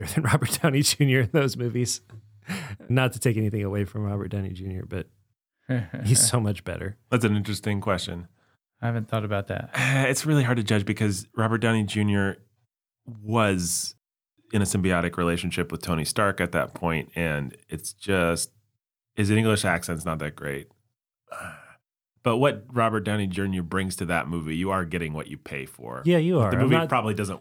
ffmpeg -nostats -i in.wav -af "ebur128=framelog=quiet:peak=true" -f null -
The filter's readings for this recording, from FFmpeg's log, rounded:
Integrated loudness:
  I:         -25.2 LUFS
  Threshold: -35.7 LUFS
Loudness range:
  LRA:         4.0 LU
  Threshold: -46.3 LUFS
  LRA low:   -28.2 LUFS
  LRA high:  -24.3 LUFS
True peak:
  Peak:       -6.8 dBFS